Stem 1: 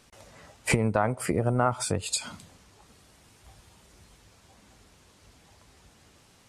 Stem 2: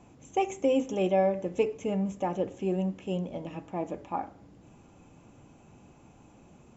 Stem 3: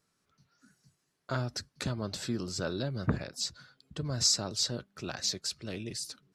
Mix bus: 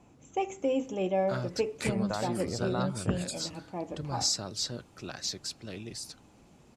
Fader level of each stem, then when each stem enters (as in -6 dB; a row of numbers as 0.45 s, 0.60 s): -10.0 dB, -3.5 dB, -2.5 dB; 1.15 s, 0.00 s, 0.00 s